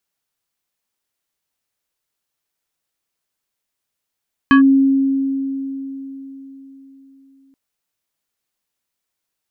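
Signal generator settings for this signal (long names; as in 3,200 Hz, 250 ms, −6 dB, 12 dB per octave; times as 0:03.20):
two-operator FM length 3.03 s, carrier 271 Hz, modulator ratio 5.16, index 0.99, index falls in 0.11 s linear, decay 4.08 s, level −5.5 dB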